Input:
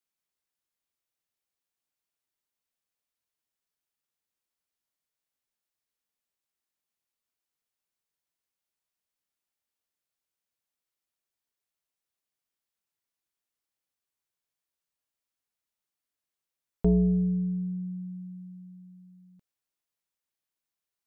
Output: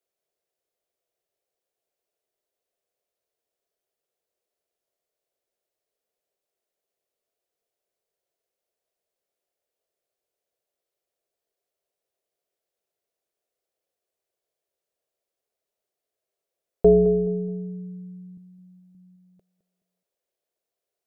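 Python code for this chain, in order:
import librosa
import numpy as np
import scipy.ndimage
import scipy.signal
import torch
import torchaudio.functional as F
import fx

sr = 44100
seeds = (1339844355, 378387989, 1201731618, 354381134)

y = fx.band_shelf(x, sr, hz=510.0, db=15.0, octaves=1.2)
y = fx.doubler(y, sr, ms=13.0, db=-3.5, at=(18.36, 18.95))
y = fx.echo_feedback(y, sr, ms=212, feedback_pct=37, wet_db=-14.5)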